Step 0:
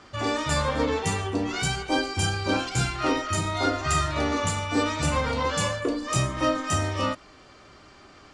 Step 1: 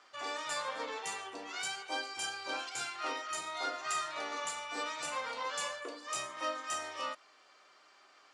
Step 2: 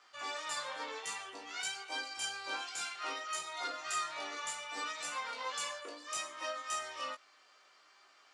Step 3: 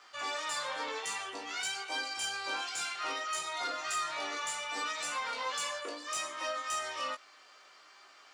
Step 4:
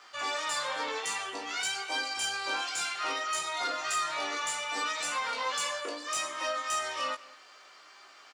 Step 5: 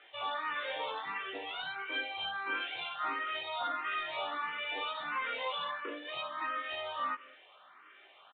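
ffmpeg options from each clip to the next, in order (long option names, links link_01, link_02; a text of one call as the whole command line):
ffmpeg -i in.wav -af "highpass=680,volume=-9dB" out.wav
ffmpeg -i in.wav -af "tiltshelf=frequency=970:gain=-3,flanger=delay=17.5:depth=2.9:speed=0.6" out.wav
ffmpeg -i in.wav -filter_complex "[0:a]asplit=2[link_01][link_02];[link_02]alimiter=level_in=11dB:limit=-24dB:level=0:latency=1,volume=-11dB,volume=0.5dB[link_03];[link_01][link_03]amix=inputs=2:normalize=0,asoftclip=type=tanh:threshold=-25dB" out.wav
ffmpeg -i in.wav -filter_complex "[0:a]asplit=2[link_01][link_02];[link_02]adelay=198.3,volume=-20dB,highshelf=frequency=4000:gain=-4.46[link_03];[link_01][link_03]amix=inputs=2:normalize=0,volume=3.5dB" out.wav
ffmpeg -i in.wav -filter_complex "[0:a]aresample=8000,aresample=44100,asplit=2[link_01][link_02];[link_02]afreqshift=1.5[link_03];[link_01][link_03]amix=inputs=2:normalize=1" out.wav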